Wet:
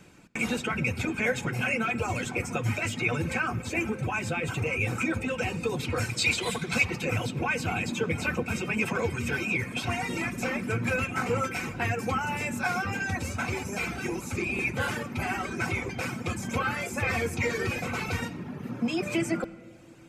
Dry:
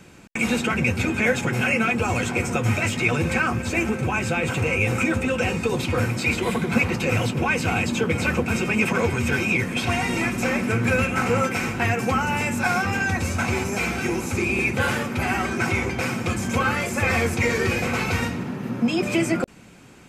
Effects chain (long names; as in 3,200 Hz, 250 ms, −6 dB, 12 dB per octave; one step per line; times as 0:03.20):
reverb reduction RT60 0.83 s
0:05.96–0:06.85: octave-band graphic EQ 250/4,000/8,000 Hz −5/+10/+8 dB
convolution reverb RT60 1.9 s, pre-delay 7 ms, DRR 13.5 dB
level −5.5 dB